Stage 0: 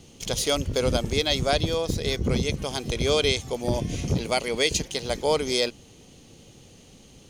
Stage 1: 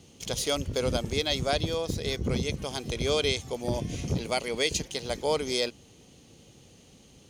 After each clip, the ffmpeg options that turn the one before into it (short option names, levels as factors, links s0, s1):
-af "highpass=42,volume=0.631"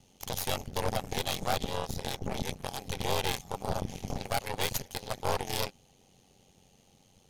-af "aeval=exprs='val(0)*sin(2*PI*46*n/s)':c=same,aeval=exprs='0.237*(cos(1*acos(clip(val(0)/0.237,-1,1)))-cos(1*PI/2))+0.0596*(cos(8*acos(clip(val(0)/0.237,-1,1)))-cos(8*PI/2))':c=same,equalizer=f=315:t=o:w=0.33:g=-7,equalizer=f=800:t=o:w=0.33:g=9,equalizer=f=12500:t=o:w=0.33:g=9,volume=0.562"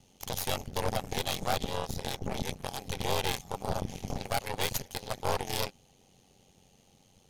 -af anull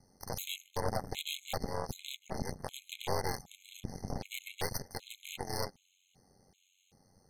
-af "afftfilt=real='re*gt(sin(2*PI*1.3*pts/sr)*(1-2*mod(floor(b*sr/1024/2100),2)),0)':imag='im*gt(sin(2*PI*1.3*pts/sr)*(1-2*mod(floor(b*sr/1024/2100),2)),0)':win_size=1024:overlap=0.75,volume=0.75"